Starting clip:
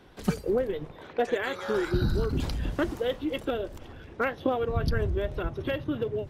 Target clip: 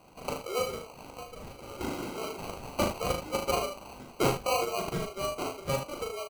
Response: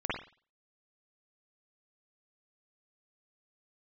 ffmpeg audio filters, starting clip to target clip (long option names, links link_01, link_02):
-filter_complex "[0:a]highpass=frequency=600:width=0.5412,highpass=frequency=600:width=1.3066,asettb=1/sr,asplit=3[link_01][link_02][link_03];[link_01]atrim=end=0.834[link_04];[link_02]atrim=start=0.83:end=1.81,asetpts=PTS-STARTPTS,afade=type=in:duration=0.004:curve=qsin,afade=type=out:start_time=0.976:duration=0.004:curve=qsin,acompressor=threshold=-45dB:ratio=8[link_05];[link_03]atrim=start=1.806[link_06];[link_04][link_05]acrossfade=duration=0.004:curve1=hsin:curve2=qsin[link_07];[link_07][link_06]acrossfade=duration=0.004:curve1=qsin:curve2=hsin,asettb=1/sr,asplit=3[link_08][link_09][link_10];[link_08]atrim=end=2.734[link_11];[link_09]atrim=start=2.73:end=4.08,asetpts=PTS-STARTPTS,afade=type=in:duration=0.004:curve=qsin,afade=type=out:start_time=1.346:duration=0.004:curve=qsin,aecho=1:1:7.2:0.86,atrim=end_sample=59535[link_12];[link_10]atrim=start=4.076[link_13];[link_11][link_12]acrossfade=duration=0.004:curve1=hsin:curve2=qsin[link_14];[link_14][link_13]acrossfade=duration=0.004:curve1=qsin:curve2=hsin,acrusher=samples=25:mix=1:aa=0.000001,aecho=1:1:39|77:0.596|0.398,volume=2.5dB"